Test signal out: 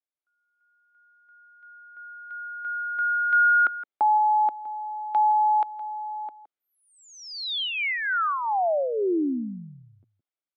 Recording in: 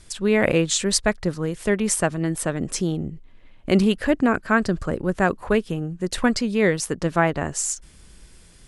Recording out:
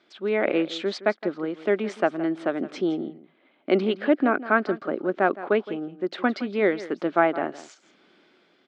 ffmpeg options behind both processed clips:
-af "dynaudnorm=f=160:g=7:m=5.5dB,highpass=f=290:w=0.5412,highpass=f=290:w=1.3066,equalizer=f=480:t=q:w=4:g=-7,equalizer=f=1k:t=q:w=4:g=-8,equalizer=f=1.8k:t=q:w=4:g=-8,equalizer=f=2.7k:t=q:w=4:g=-8,lowpass=f=3.1k:w=0.5412,lowpass=f=3.1k:w=1.3066,aecho=1:1:166:0.158"

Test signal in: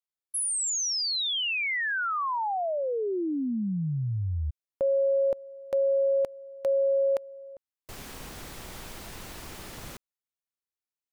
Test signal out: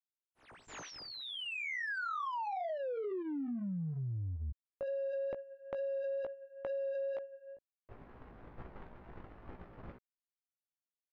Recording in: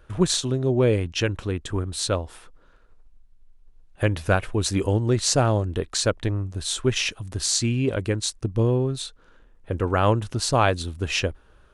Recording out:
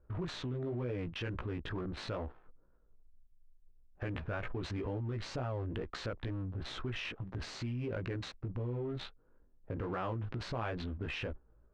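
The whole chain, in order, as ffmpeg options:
-af "adynamicsmooth=sensitivity=7.5:basefreq=570,equalizer=f=1.6k:w=0.92:g=2,flanger=delay=16:depth=2.2:speed=2.2,acompressor=threshold=-38dB:ratio=8:attack=5.8:release=25:knee=1:detection=peak,agate=range=-8dB:threshold=-45dB:ratio=16:release=212:detection=peak,lowpass=2.7k,volume=1dB"

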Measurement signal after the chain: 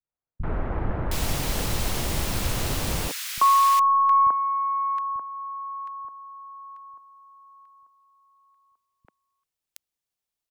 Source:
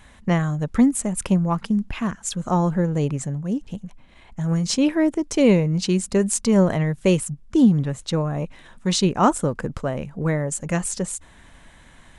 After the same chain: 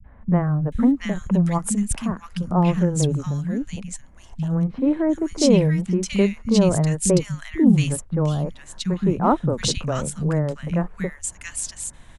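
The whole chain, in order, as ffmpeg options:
-filter_complex "[0:a]aeval=exprs='0.531*(cos(1*acos(clip(val(0)/0.531,-1,1)))-cos(1*PI/2))+0.00531*(cos(2*acos(clip(val(0)/0.531,-1,1)))-cos(2*PI/2))':c=same,acrossover=split=200|2000[a][b][c];[a]acontrast=30[d];[b]adynamicequalizer=threshold=0.0178:dfrequency=1100:dqfactor=4.2:tfrequency=1100:tqfactor=4.2:attack=5:release=100:ratio=0.375:range=2.5:mode=cutabove:tftype=bell[e];[d][e][c]amix=inputs=3:normalize=0,acrossover=split=210|1600[f][g][h];[g]adelay=40[i];[h]adelay=720[j];[f][i][j]amix=inputs=3:normalize=0"

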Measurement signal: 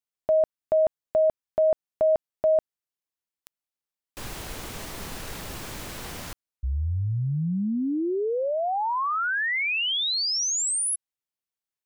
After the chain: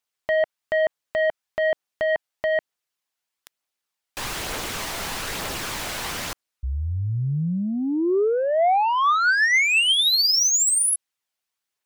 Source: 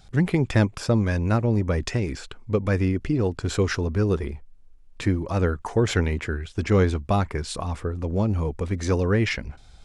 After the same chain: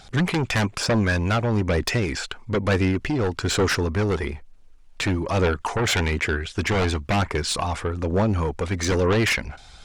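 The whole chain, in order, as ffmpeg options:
-filter_complex "[0:a]asplit=2[a][b];[b]highpass=f=720:p=1,volume=11dB,asoftclip=type=tanh:threshold=-8dB[c];[a][c]amix=inputs=2:normalize=0,lowpass=f=7.4k:p=1,volume=-6dB,aeval=exprs='0.335*sin(PI/2*2.51*val(0)/0.335)':c=same,aphaser=in_gain=1:out_gain=1:delay=1.5:decay=0.25:speed=1.1:type=triangular,volume=-8dB"

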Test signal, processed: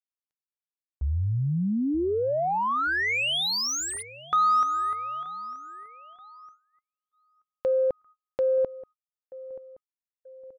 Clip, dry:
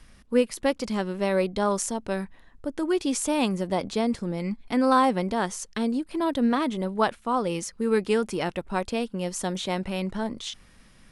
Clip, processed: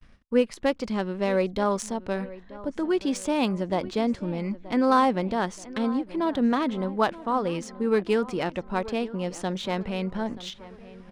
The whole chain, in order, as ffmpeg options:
-filter_complex "[0:a]asplit=2[a][b];[b]adelay=929,lowpass=f=3.7k:p=1,volume=-17.5dB,asplit=2[c][d];[d]adelay=929,lowpass=f=3.7k:p=1,volume=0.49,asplit=2[e][f];[f]adelay=929,lowpass=f=3.7k:p=1,volume=0.49,asplit=2[g][h];[h]adelay=929,lowpass=f=3.7k:p=1,volume=0.49[i];[a][c][e][g][i]amix=inputs=5:normalize=0,adynamicsmooth=sensitivity=2.5:basefreq=4.5k,agate=range=-36dB:threshold=-51dB:ratio=16:detection=peak"

